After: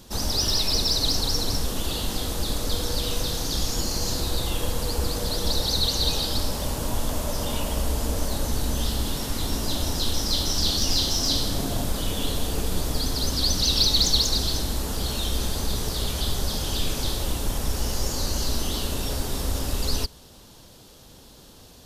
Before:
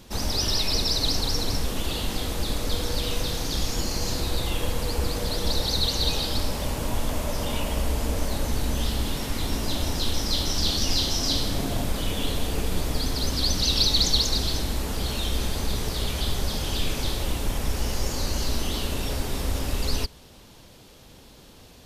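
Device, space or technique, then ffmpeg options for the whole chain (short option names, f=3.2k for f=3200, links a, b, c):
exciter from parts: -filter_complex "[0:a]asplit=2[a][b];[b]highpass=f=2.1k:w=0.5412,highpass=f=2.1k:w=1.3066,asoftclip=type=tanh:threshold=-21dB,volume=-5dB[c];[a][c]amix=inputs=2:normalize=0"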